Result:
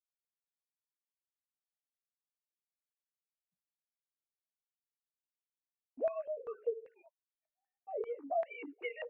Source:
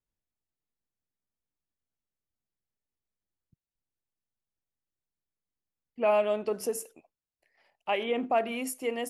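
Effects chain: sine-wave speech; gate with hold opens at -54 dBFS; chorus voices 2, 0.47 Hz, delay 18 ms, depth 3.6 ms; compressor 6:1, threshold -40 dBFS, peak gain reduction 16.5 dB; stepped low-pass 5.1 Hz 480–2400 Hz

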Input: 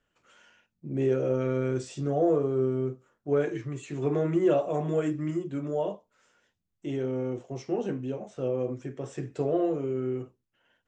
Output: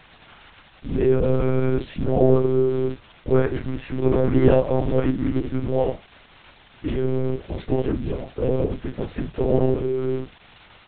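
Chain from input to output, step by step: harmoniser -7 st -3 dB, -3 st -12 dB; crackle 500/s -36 dBFS; monotone LPC vocoder at 8 kHz 130 Hz; gain +6 dB

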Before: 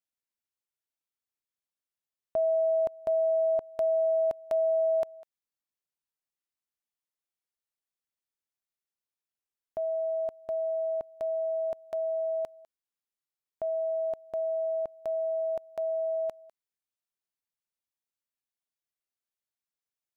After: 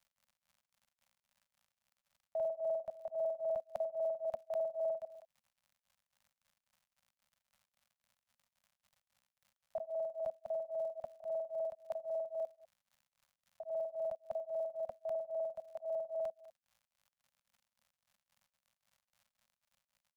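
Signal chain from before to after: local time reversal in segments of 50 ms; compressor 2:1, threshold -34 dBFS, peak gain reduction 5.5 dB; crackle 140/s -55 dBFS; Chebyshev band-stop 230–530 Hz, order 4; beating tremolo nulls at 3.7 Hz; gain -1.5 dB

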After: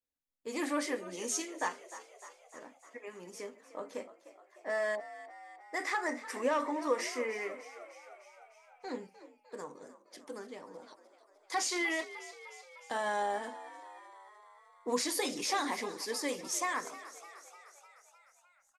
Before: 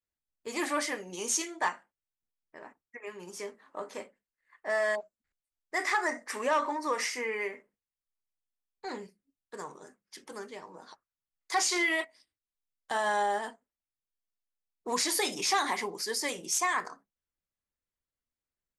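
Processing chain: small resonant body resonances 270/500 Hz, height 11 dB, ringing for 55 ms; frequency-shifting echo 0.303 s, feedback 64%, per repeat +56 Hz, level -15 dB; gain -5.5 dB

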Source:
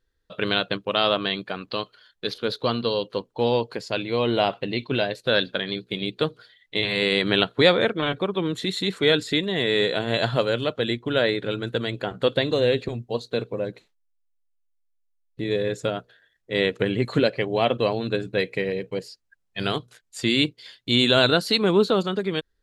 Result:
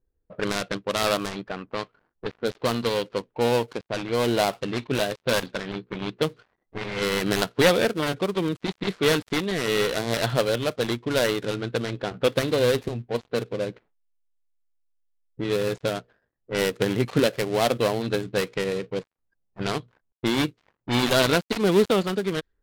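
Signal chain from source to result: switching dead time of 0.18 ms; low-pass opened by the level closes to 660 Hz, open at -21 dBFS

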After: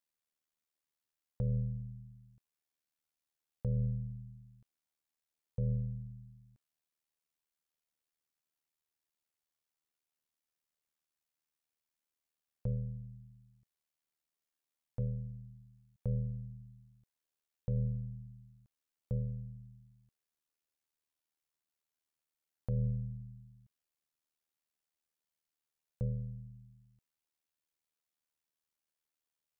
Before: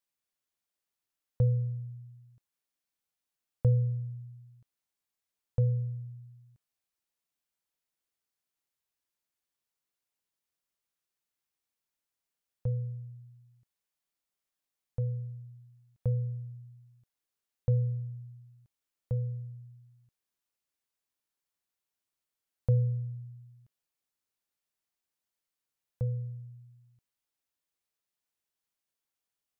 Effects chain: limiter -24 dBFS, peak gain reduction 8 dB; AM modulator 77 Hz, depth 60%

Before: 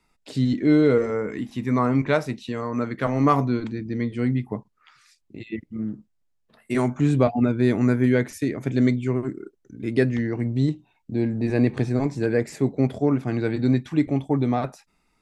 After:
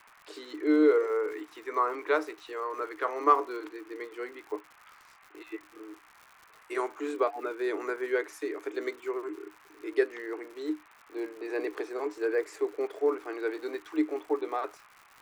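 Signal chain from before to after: band noise 650–2500 Hz -55 dBFS; rippled Chebyshev high-pass 300 Hz, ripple 9 dB; crackle 140/s -43 dBFS

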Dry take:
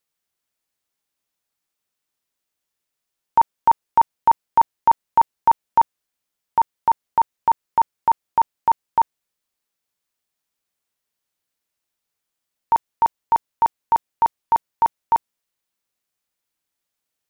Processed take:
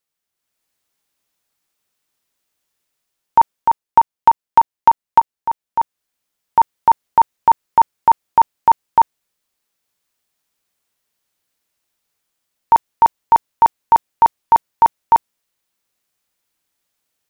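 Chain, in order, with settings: 3.86–5.2 transient shaper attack +12 dB, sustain 0 dB; AGC gain up to 8 dB; gain -1 dB

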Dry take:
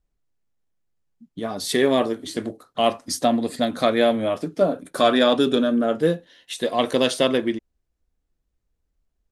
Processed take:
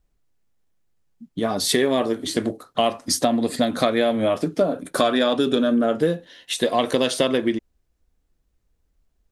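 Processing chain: compressor 6:1, threshold -22 dBFS, peak gain reduction 10 dB; gain +6 dB

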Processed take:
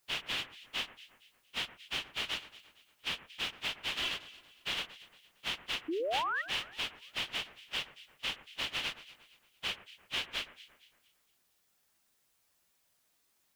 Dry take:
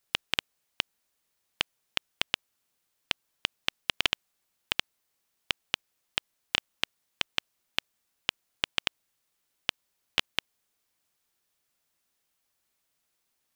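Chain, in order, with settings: phase scrambler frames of 0.1 s; compressor 3:1, threshold -39 dBFS, peak gain reduction 11 dB; painted sound rise, 5.88–6.42, 300–2000 Hz -37 dBFS; on a send: echo with dull and thin repeats by turns 0.115 s, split 2000 Hz, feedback 60%, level -13 dB; on the sum: gain +3.5 dB

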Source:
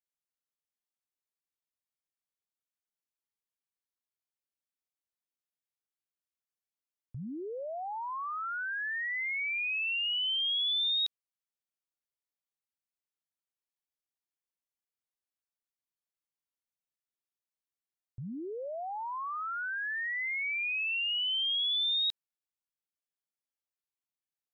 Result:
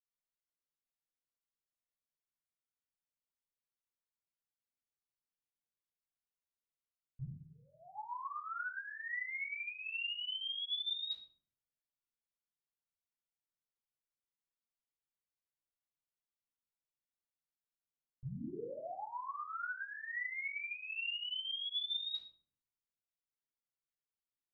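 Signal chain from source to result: 7.21–7.92 steep high-pass 910 Hz 36 dB/oct; reverb RT60 0.55 s, pre-delay 46 ms; ending taper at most 430 dB/s; gain +2 dB

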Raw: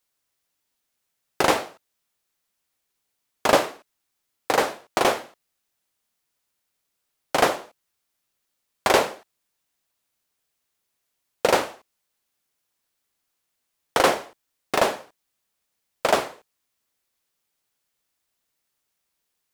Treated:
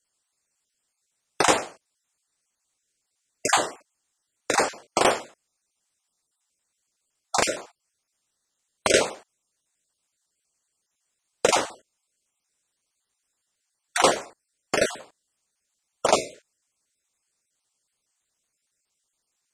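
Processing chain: random spectral dropouts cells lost 30%; synth low-pass 7900 Hz, resonance Q 3.1

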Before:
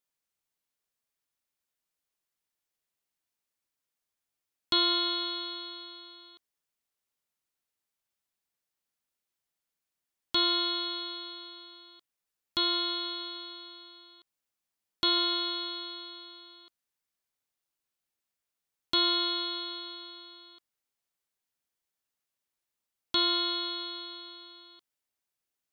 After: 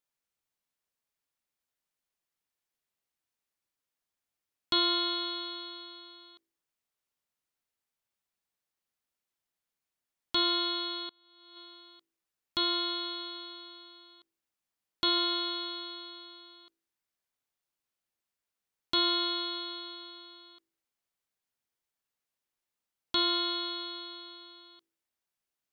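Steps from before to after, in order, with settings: high shelf 3900 Hz -3.5 dB; de-hum 55.22 Hz, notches 11; 11.09–11.57 negative-ratio compressor -55 dBFS, ratio -0.5

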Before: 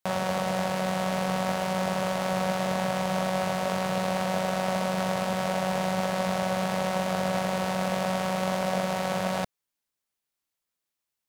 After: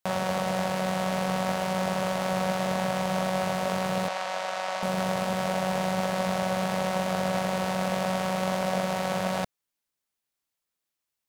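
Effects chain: 4.08–4.83 three-band isolator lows -21 dB, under 550 Hz, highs -14 dB, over 8000 Hz

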